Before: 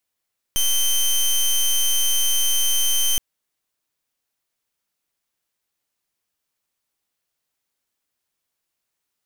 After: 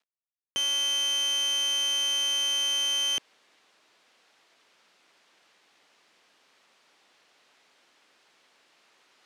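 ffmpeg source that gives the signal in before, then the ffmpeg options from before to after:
-f lavfi -i "aevalsrc='0.119*(2*lt(mod(3110*t,1),0.15)-1)':duration=2.62:sample_rate=44100"
-af "areverse,acompressor=mode=upward:threshold=-38dB:ratio=2.5,areverse,acrusher=bits=9:mix=0:aa=0.000001,highpass=290,lowpass=3900"

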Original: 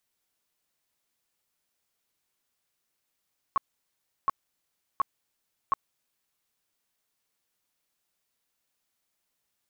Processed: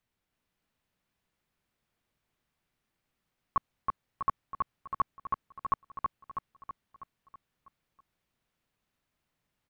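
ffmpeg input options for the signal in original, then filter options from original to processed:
-f lavfi -i "aevalsrc='0.106*sin(2*PI*1100*mod(t,0.72))*lt(mod(t,0.72),18/1100)':duration=2.88:sample_rate=44100"
-filter_complex "[0:a]bass=frequency=250:gain=10,treble=frequency=4000:gain=-12,asplit=2[link_01][link_02];[link_02]aecho=0:1:324|648|972|1296|1620|1944|2268:0.708|0.382|0.206|0.111|0.0602|0.0325|0.0176[link_03];[link_01][link_03]amix=inputs=2:normalize=0"

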